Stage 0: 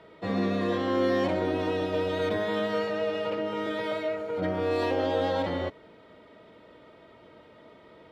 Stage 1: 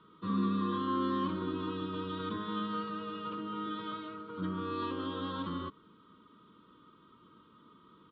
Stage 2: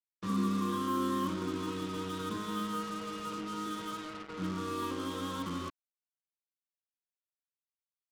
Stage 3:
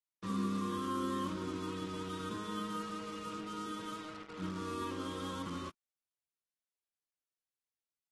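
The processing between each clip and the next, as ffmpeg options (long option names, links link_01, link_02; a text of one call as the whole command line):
ffmpeg -i in.wav -af "firequalizer=gain_entry='entry(100,0);entry(180,8);entry(370,1);entry(710,-24);entry(1100,14);entry(2000,-12);entry(3300,6);entry(5900,-22)':delay=0.05:min_phase=1,volume=-9dB" out.wav
ffmpeg -i in.wav -af "acrusher=bits=6:mix=0:aa=0.5" out.wav
ffmpeg -i in.wav -af "volume=-4.5dB" -ar 32000 -c:a aac -b:a 32k out.aac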